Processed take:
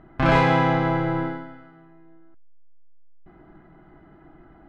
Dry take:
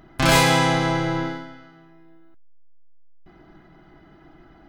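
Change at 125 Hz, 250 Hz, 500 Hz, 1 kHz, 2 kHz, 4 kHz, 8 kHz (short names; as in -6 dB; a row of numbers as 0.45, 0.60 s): 0.0 dB, 0.0 dB, 0.0 dB, -0.5 dB, -3.5 dB, -12.0 dB, under -20 dB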